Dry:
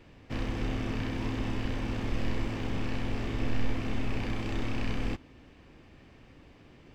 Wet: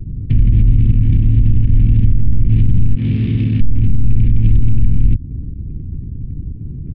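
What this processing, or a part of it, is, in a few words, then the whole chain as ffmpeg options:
mastering chain: -filter_complex "[0:a]asplit=3[a][b][c];[a]afade=t=out:st=2.94:d=0.02[d];[b]highpass=180,afade=t=in:st=2.94:d=0.02,afade=t=out:st=3.6:d=0.02[e];[c]afade=t=in:st=3.6:d=0.02[f];[d][e][f]amix=inputs=3:normalize=0,equalizer=f=460:t=o:w=0.66:g=3,acrossover=split=230|2400[g][h][i];[g]acompressor=threshold=-29dB:ratio=4[j];[h]acompressor=threshold=-43dB:ratio=4[k];[i]acompressor=threshold=-56dB:ratio=4[l];[j][k][l]amix=inputs=3:normalize=0,acompressor=threshold=-36dB:ratio=2.5,tiltshelf=f=650:g=9.5,alimiter=level_in=25dB:limit=-1dB:release=50:level=0:latency=1,anlmdn=1580,firequalizer=gain_entry='entry(130,0);entry(260,-11);entry(630,-29);entry(2300,0);entry(3600,4);entry(7700,-21)':delay=0.05:min_phase=1,volume=-1dB"

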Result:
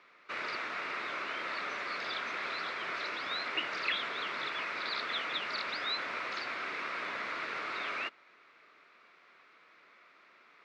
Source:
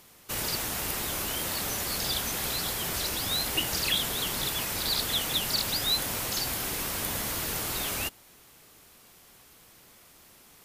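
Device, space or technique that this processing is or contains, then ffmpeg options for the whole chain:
phone earpiece: -af "highpass=500,equalizer=f=500:t=q:w=4:g=-3,equalizer=f=810:t=q:w=4:g=-9,equalizer=f=1.3k:t=q:w=4:g=6,equalizer=f=2.2k:t=q:w=4:g=5,equalizer=f=3.1k:t=q:w=4:g=-9,lowpass=f=3.3k:w=0.5412,lowpass=f=3.3k:w=1.3066"

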